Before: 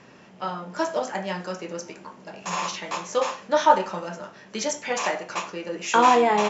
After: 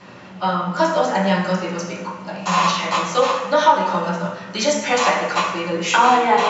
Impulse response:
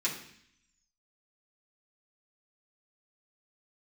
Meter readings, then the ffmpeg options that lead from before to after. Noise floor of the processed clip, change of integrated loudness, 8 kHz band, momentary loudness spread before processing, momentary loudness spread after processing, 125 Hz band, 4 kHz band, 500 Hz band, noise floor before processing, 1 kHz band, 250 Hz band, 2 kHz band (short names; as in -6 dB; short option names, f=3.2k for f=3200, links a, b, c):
-38 dBFS, +6.0 dB, n/a, 17 LU, 11 LU, +13.5 dB, +8.5 dB, +5.0 dB, -50 dBFS, +6.0 dB, +8.0 dB, +8.0 dB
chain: -filter_complex "[0:a]acompressor=threshold=-21dB:ratio=6[a];[1:a]atrim=start_sample=2205,asetrate=25137,aresample=44100[b];[a][b]afir=irnorm=-1:irlink=0"